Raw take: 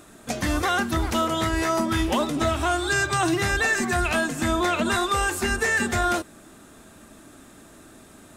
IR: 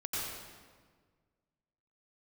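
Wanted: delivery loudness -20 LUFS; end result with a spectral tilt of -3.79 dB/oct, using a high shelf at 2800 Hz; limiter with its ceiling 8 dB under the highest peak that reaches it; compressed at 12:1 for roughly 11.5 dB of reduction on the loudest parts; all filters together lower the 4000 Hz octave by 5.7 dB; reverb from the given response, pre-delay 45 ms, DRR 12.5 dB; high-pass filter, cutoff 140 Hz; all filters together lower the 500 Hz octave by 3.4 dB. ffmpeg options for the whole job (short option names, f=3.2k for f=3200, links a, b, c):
-filter_complex "[0:a]highpass=140,equalizer=f=500:t=o:g=-5,highshelf=f=2.8k:g=-3.5,equalizer=f=4k:t=o:g=-4.5,acompressor=threshold=-33dB:ratio=12,alimiter=level_in=7.5dB:limit=-24dB:level=0:latency=1,volume=-7.5dB,asplit=2[a][b];[1:a]atrim=start_sample=2205,adelay=45[c];[b][c]afir=irnorm=-1:irlink=0,volume=-17dB[d];[a][d]amix=inputs=2:normalize=0,volume=20dB"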